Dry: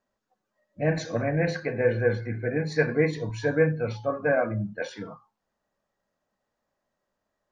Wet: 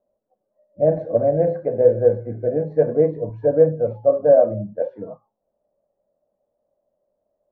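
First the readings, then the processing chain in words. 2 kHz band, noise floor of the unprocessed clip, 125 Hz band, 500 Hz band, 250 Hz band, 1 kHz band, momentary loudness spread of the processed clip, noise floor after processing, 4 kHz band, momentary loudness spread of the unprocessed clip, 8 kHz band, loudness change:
under -15 dB, -82 dBFS, +0.5 dB, +10.0 dB, +2.0 dB, +4.0 dB, 12 LU, -77 dBFS, under -30 dB, 9 LU, n/a, +7.5 dB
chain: synth low-pass 590 Hz, resonance Q 4.9

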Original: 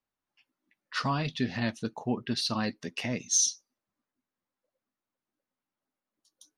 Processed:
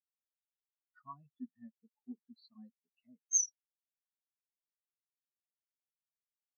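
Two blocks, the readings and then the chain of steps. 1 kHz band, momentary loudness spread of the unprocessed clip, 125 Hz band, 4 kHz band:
under -15 dB, 11 LU, under -30 dB, under -30 dB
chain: low shelf 260 Hz -7.5 dB; spectral expander 4:1; gain -4.5 dB

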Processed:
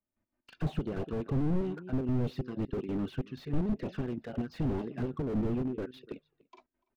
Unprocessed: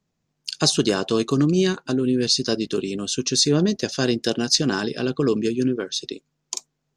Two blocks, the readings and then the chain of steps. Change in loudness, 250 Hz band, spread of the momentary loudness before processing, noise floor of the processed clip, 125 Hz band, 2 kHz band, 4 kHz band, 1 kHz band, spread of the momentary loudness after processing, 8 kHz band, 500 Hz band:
-13.0 dB, -11.0 dB, 14 LU, under -85 dBFS, -6.5 dB, -19.0 dB, -31.5 dB, -12.5 dB, 7 LU, under -40 dB, -14.0 dB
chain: LPF 2300 Hz 24 dB/oct; step gate "..x.x.xxxx" 187 bpm -12 dB; envelope flanger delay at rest 3.3 ms, full sweep at -20.5 dBFS; outdoor echo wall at 50 m, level -26 dB; slew limiter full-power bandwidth 9.5 Hz

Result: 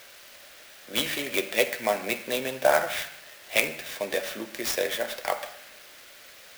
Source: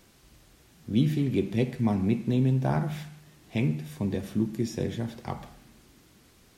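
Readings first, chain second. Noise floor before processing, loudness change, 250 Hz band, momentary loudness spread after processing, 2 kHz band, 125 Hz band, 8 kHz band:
-59 dBFS, +1.0 dB, -12.0 dB, 22 LU, +15.0 dB, -23.0 dB, +15.0 dB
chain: resonant high-pass 580 Hz, resonance Q 5.9; band shelf 3200 Hz +15 dB 2.8 oct; clock jitter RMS 0.032 ms

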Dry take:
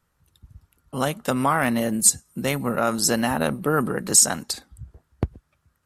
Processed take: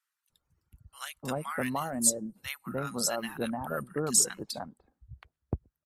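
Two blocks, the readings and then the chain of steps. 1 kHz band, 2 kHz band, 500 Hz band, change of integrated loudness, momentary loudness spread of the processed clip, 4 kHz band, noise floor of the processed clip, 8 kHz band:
-11.0 dB, -10.5 dB, -10.0 dB, -9.0 dB, 15 LU, -8.5 dB, under -85 dBFS, -8.0 dB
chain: reverb removal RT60 1.9 s; bands offset in time highs, lows 0.3 s, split 1200 Hz; gain -8 dB

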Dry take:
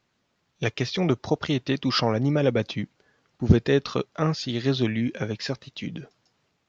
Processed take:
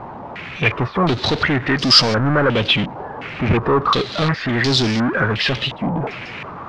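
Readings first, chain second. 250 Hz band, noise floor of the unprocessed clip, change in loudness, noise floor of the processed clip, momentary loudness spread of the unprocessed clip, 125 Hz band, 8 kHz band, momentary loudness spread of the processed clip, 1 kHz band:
+5.0 dB, -73 dBFS, +8.0 dB, -33 dBFS, 12 LU, +5.0 dB, n/a, 17 LU, +13.0 dB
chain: power-law curve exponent 0.35; stepped low-pass 2.8 Hz 880–5100 Hz; gain -5.5 dB

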